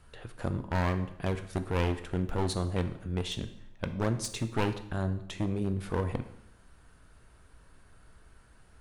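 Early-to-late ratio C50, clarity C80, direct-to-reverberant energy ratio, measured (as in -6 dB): 12.0 dB, 14.5 dB, 9.0 dB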